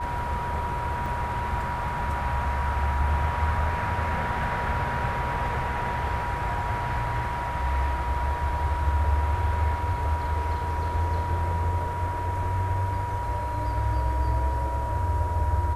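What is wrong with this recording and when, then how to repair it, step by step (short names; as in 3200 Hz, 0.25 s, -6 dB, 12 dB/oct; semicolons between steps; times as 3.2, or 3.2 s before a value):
tone 960 Hz -30 dBFS
1.06 gap 2.2 ms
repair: notch 960 Hz, Q 30; interpolate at 1.06, 2.2 ms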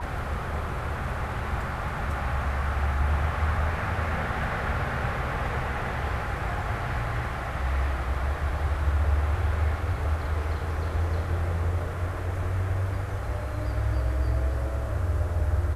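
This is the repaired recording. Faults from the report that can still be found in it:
none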